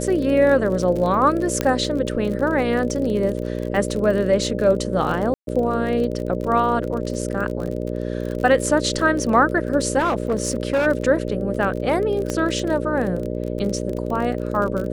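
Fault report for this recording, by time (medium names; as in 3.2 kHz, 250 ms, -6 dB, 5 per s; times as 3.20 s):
buzz 60 Hz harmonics 10 -26 dBFS
crackle 38 per s -27 dBFS
1.61 s: pop -6 dBFS
5.34–5.47 s: dropout 132 ms
9.98–10.87 s: clipped -15.5 dBFS
12.30 s: pop -11 dBFS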